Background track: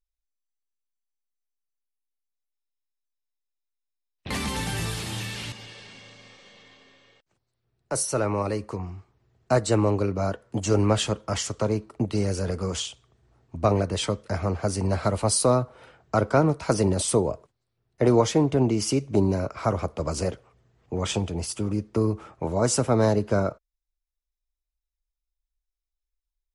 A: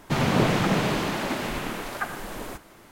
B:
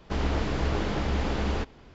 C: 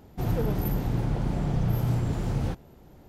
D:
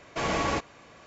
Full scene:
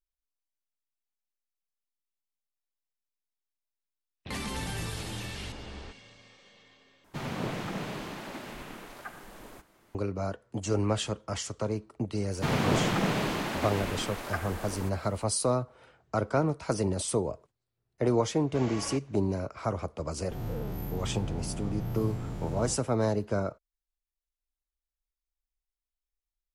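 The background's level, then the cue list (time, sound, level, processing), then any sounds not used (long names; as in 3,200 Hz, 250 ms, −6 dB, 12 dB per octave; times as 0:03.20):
background track −6.5 dB
0:04.28: mix in B −16 dB
0:07.04: overwrite with A −12.5 dB
0:12.32: mix in A −4.5 dB
0:18.38: mix in D −12.5 dB
0:20.17: mix in C −13 dB + every bin's largest magnitude spread in time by 120 ms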